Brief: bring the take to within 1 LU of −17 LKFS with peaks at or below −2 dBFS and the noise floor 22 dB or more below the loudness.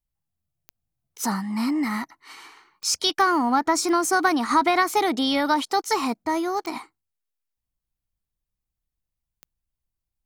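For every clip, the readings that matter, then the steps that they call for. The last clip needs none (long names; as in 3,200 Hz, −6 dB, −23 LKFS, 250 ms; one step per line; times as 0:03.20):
number of clicks 6; integrated loudness −23.0 LKFS; sample peak −8.5 dBFS; target loudness −17.0 LKFS
→ click removal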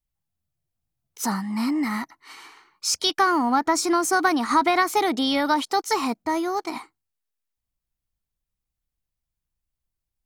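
number of clicks 0; integrated loudness −23.0 LKFS; sample peak −8.5 dBFS; target loudness −17.0 LKFS
→ level +6 dB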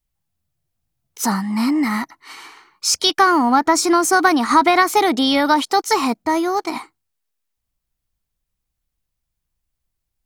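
integrated loudness −17.0 LKFS; sample peak −2.5 dBFS; background noise floor −79 dBFS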